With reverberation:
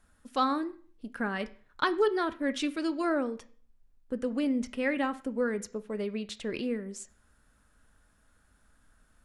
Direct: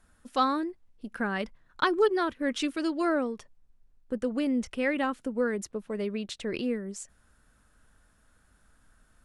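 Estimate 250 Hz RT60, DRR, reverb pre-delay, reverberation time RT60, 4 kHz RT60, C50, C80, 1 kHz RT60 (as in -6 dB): 0.50 s, 11.0 dB, 3 ms, 0.45 s, 0.40 s, 18.0 dB, 21.5 dB, 0.45 s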